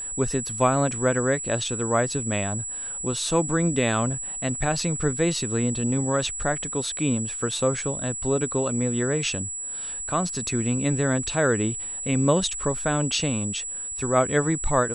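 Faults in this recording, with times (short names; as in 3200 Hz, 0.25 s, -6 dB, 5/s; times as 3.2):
tone 7800 Hz -30 dBFS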